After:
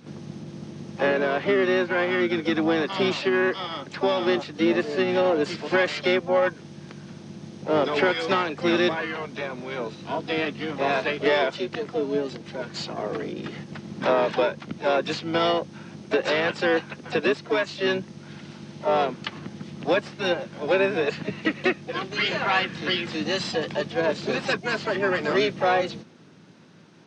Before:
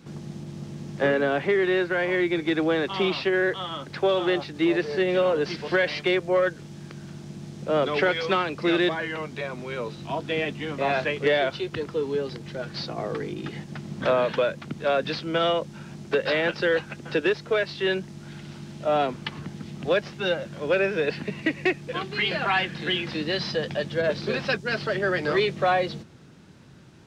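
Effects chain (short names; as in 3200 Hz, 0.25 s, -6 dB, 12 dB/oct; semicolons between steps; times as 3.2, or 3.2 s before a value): FFT band-pass 140–6700 Hz; harmoniser -7 st -9 dB, +7 st -11 dB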